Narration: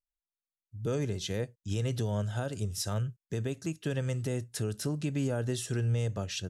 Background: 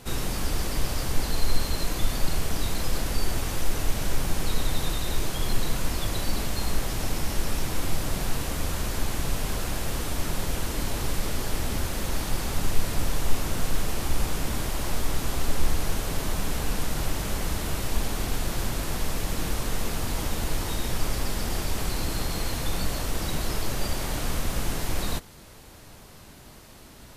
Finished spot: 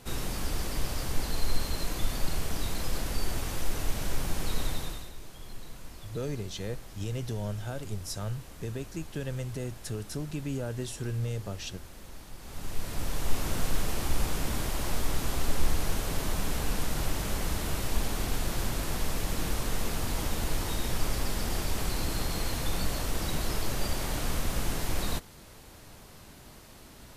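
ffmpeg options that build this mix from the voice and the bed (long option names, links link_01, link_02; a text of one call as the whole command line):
ffmpeg -i stem1.wav -i stem2.wav -filter_complex "[0:a]adelay=5300,volume=-3dB[link_01];[1:a]volume=11dB,afade=type=out:start_time=4.65:duration=0.47:silence=0.211349,afade=type=in:start_time=12.39:duration=1.11:silence=0.16788[link_02];[link_01][link_02]amix=inputs=2:normalize=0" out.wav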